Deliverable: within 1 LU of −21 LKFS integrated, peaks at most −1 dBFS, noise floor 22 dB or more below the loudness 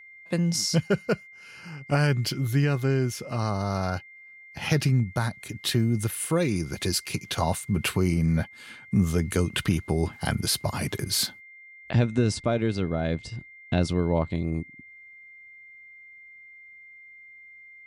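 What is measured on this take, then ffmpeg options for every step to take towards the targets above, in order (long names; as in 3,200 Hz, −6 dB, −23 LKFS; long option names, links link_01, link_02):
interfering tone 2,100 Hz; level of the tone −46 dBFS; integrated loudness −26.5 LKFS; sample peak −10.5 dBFS; target loudness −21.0 LKFS
→ -af "bandreject=frequency=2100:width=30"
-af "volume=5.5dB"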